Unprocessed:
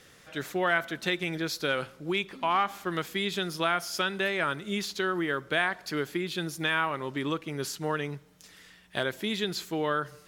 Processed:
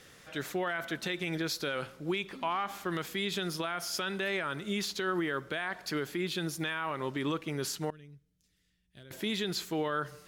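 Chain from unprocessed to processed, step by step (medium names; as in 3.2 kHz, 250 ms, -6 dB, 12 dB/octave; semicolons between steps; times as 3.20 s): 7.90–9.11 s: amplifier tone stack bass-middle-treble 10-0-1; peak limiter -23 dBFS, peak gain reduction 11 dB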